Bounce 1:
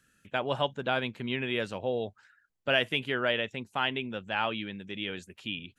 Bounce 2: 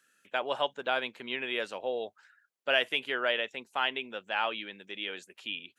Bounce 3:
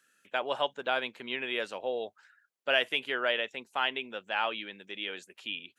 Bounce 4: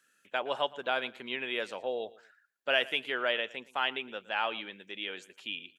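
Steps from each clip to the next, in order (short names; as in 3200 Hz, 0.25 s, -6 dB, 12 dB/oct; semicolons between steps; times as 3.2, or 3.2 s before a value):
HPF 430 Hz 12 dB/oct
nothing audible
feedback echo 0.115 s, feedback 27%, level -20 dB; gain -1 dB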